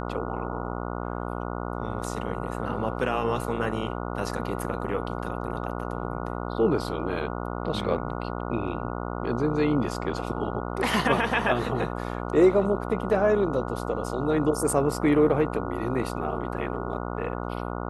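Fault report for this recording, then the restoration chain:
mains buzz 60 Hz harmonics 24 −32 dBFS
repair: hum removal 60 Hz, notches 24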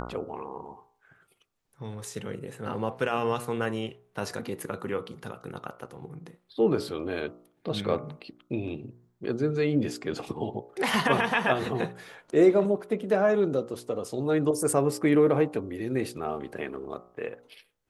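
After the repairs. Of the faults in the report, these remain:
none of them is left

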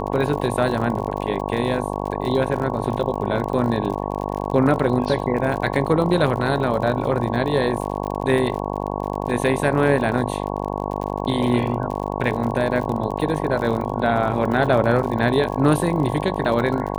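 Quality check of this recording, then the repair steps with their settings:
mains buzz 50 Hz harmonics 22 −26 dBFS
surface crackle 49 per second −28 dBFS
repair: click removal
hum removal 50 Hz, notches 22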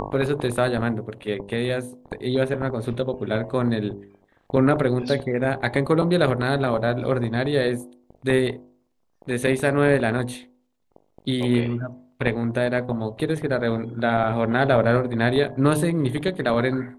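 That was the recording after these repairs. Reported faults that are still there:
none of them is left

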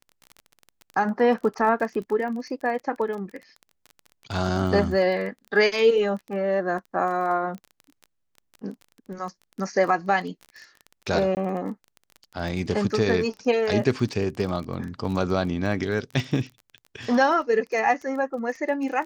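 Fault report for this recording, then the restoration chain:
surface crackle 21 per second −32 dBFS
0:11.35–0:11.37: drop-out 19 ms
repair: click removal
repair the gap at 0:11.35, 19 ms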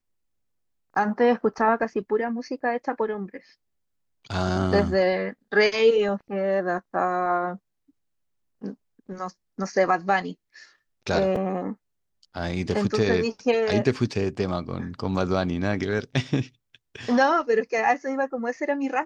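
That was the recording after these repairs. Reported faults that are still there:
none of them is left

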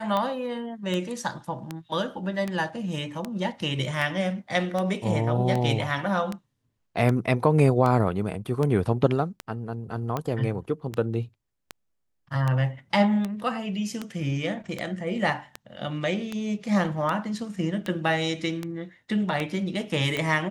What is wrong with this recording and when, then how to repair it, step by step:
scratch tick 78 rpm −15 dBFS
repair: click removal

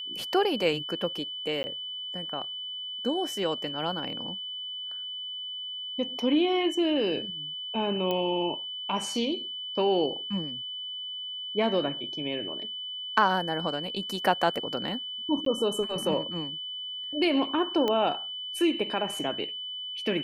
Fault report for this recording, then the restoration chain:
whistle 3,000 Hz −34 dBFS
0:01.63–0:01.64: drop-out 10 ms
0:08.11: click −17 dBFS
0:15.45–0:15.46: drop-out 13 ms
0:17.88: click −15 dBFS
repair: click removal
notch filter 3,000 Hz, Q 30
repair the gap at 0:01.63, 10 ms
repair the gap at 0:15.45, 13 ms

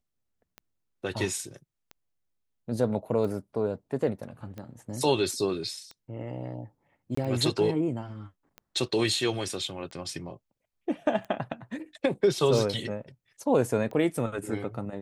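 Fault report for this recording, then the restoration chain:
scratch tick 45 rpm −27 dBFS
0:07.15–0:07.17: drop-out 24 ms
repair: click removal
repair the gap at 0:07.15, 24 ms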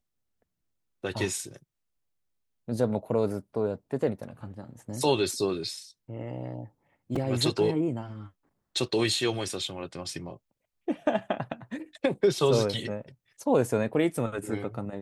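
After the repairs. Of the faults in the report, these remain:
none of them is left

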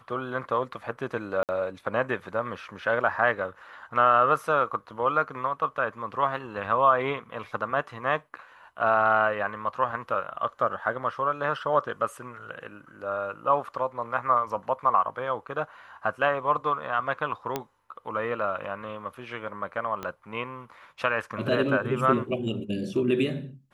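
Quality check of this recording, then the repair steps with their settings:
0:01.43–0:01.49: drop-out 58 ms
0:17.56: click −13 dBFS
0:20.03: click −19 dBFS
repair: click removal
repair the gap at 0:01.43, 58 ms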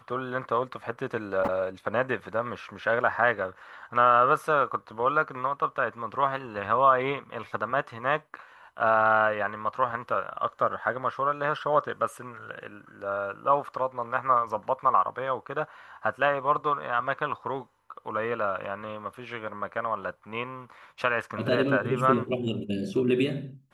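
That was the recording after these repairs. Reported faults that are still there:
0:20.03: click

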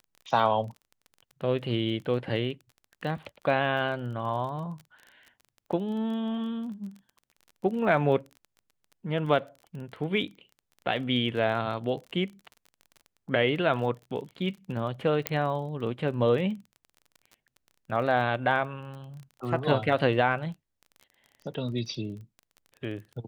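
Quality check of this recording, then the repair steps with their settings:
surface crackle 25 per second −38 dBFS
0:15.27: click −8 dBFS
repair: click removal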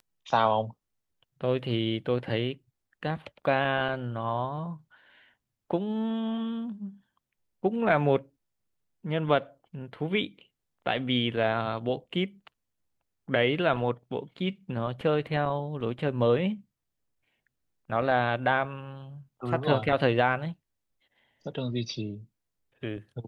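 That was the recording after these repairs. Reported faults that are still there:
0:15.27: click

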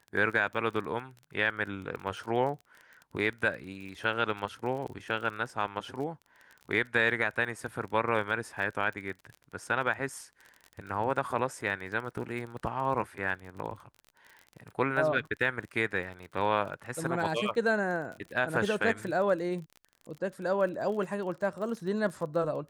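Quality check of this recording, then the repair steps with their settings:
surface crackle 30 per second −38 dBFS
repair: click removal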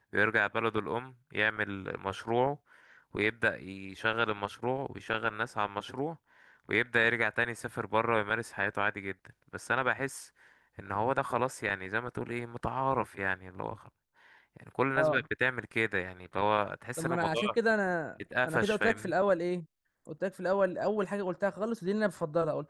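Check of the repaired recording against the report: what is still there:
none of them is left

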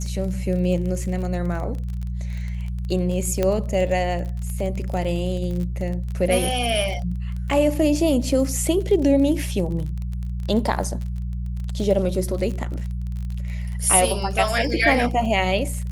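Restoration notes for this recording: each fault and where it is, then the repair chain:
surface crackle 29 per second −28 dBFS
mains hum 60 Hz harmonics 3 −27 dBFS
0:03.43: click −9 dBFS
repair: click removal
hum removal 60 Hz, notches 3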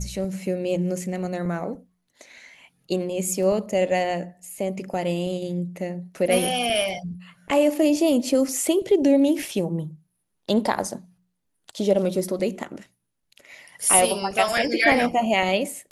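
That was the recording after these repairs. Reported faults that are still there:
0:03.43: click

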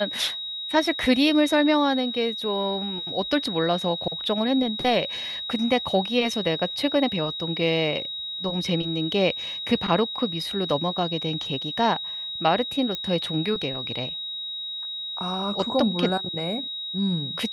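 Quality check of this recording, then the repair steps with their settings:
whistle 3,800 Hz −30 dBFS
0:12.95: click −15 dBFS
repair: click removal
notch filter 3,800 Hz, Q 30

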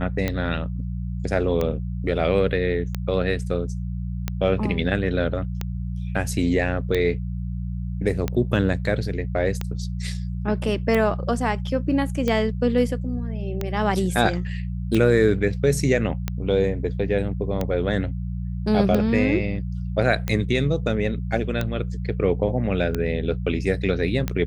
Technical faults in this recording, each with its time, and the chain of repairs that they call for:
mains hum 60 Hz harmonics 3 −28 dBFS
scratch tick 45 rpm −11 dBFS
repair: click removal
hum removal 60 Hz, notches 3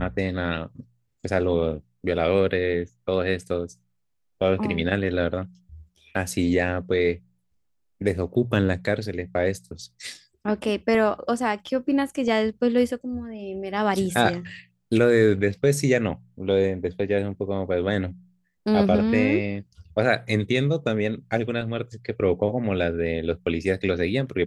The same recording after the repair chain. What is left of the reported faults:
none of them is left

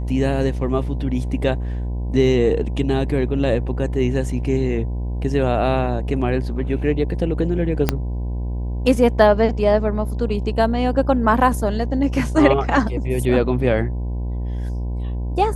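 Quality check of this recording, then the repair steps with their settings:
mains buzz 60 Hz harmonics 17 −24 dBFS
0:07.89: click −3 dBFS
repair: click removal
hum removal 60 Hz, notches 17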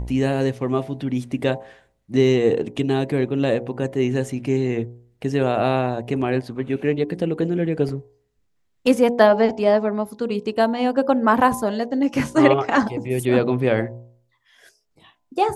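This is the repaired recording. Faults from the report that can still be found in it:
0:07.89: click

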